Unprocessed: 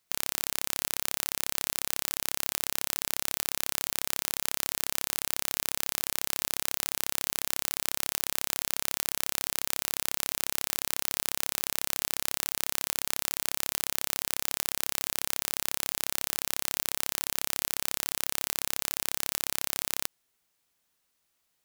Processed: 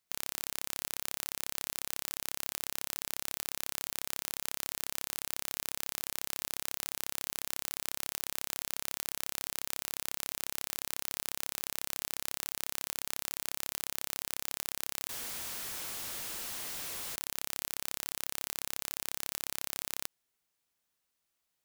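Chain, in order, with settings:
0:15.09–0:17.16: sign of each sample alone
level −6.5 dB

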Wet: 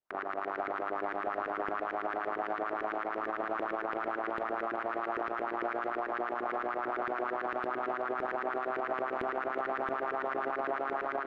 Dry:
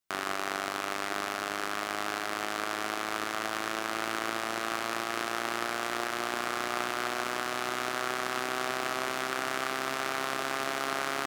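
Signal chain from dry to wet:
running median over 3 samples
parametric band 110 Hz −10 dB 2.2 octaves
auto-filter low-pass saw up 8.9 Hz 370–2,000 Hz
automatic gain control gain up to 6.5 dB
spring reverb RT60 1.8 s, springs 40/46/60 ms, chirp 20 ms, DRR 19 dB
brickwall limiter −23 dBFS, peak gain reduction 17 dB
delay with a high-pass on its return 374 ms, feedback 41%, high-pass 2,100 Hz, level −10 dB
Opus 48 kbit/s 48,000 Hz

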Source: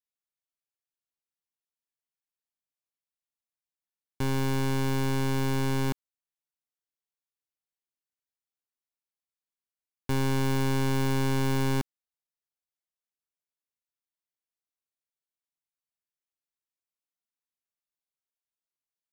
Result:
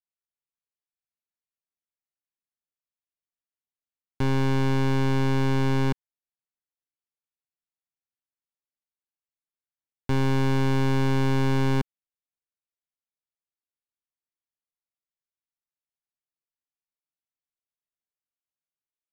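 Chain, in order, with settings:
bass and treble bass +4 dB, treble −11 dB
leveller curve on the samples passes 3

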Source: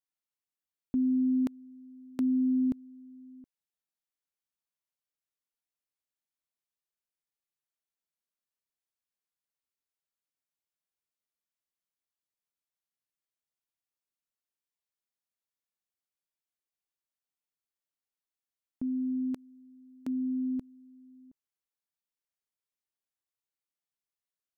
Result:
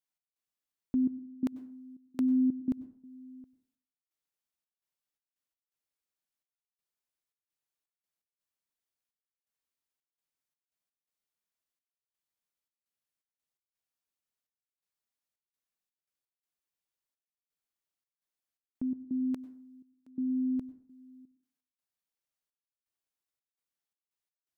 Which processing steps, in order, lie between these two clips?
gate pattern "x.xxxx..xxx.xx." 84 BPM −24 dB
dense smooth reverb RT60 0.51 s, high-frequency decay 0.6×, pre-delay 85 ms, DRR 16.5 dB

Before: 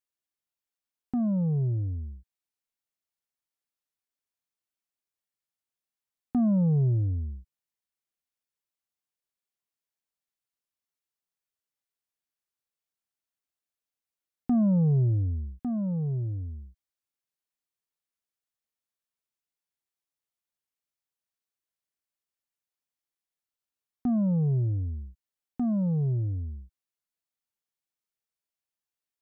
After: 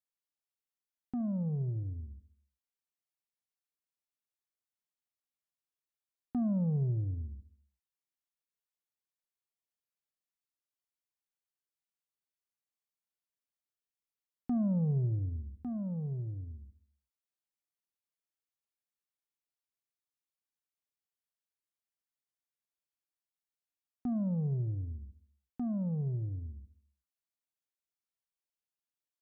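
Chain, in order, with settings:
repeating echo 71 ms, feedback 57%, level −16 dB
level −7.5 dB

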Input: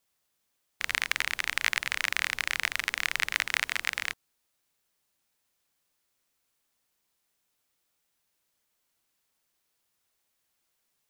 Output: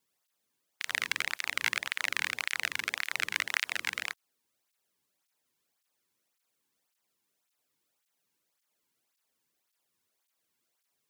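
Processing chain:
high-pass filter 88 Hz
low-shelf EQ 200 Hz +8.5 dB
through-zero flanger with one copy inverted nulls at 1.8 Hz, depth 1.7 ms

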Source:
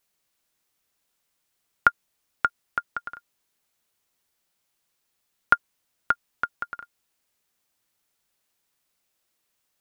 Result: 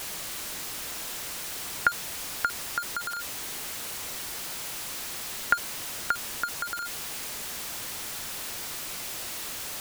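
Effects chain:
converter with a step at zero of −23 dBFS
highs frequency-modulated by the lows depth 0.1 ms
level −5.5 dB

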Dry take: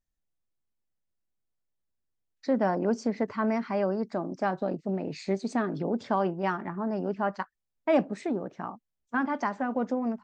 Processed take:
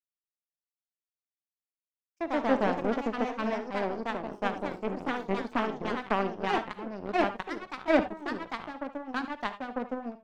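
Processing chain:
power curve on the samples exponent 2
reverb whose tail is shaped and stops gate 100 ms rising, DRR 11 dB
delay with pitch and tempo change per echo 117 ms, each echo +2 semitones, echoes 2
level +4 dB

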